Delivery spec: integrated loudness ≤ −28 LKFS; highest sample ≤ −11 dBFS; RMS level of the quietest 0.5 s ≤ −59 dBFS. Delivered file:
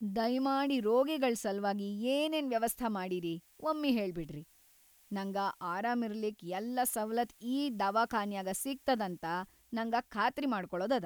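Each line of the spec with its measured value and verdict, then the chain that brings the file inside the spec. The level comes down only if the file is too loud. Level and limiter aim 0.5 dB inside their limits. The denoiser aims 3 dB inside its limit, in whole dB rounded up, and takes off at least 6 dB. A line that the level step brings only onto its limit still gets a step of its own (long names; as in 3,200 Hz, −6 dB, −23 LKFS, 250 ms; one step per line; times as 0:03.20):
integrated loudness −34.0 LKFS: in spec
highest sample −18.0 dBFS: in spec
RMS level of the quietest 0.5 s −65 dBFS: in spec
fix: no processing needed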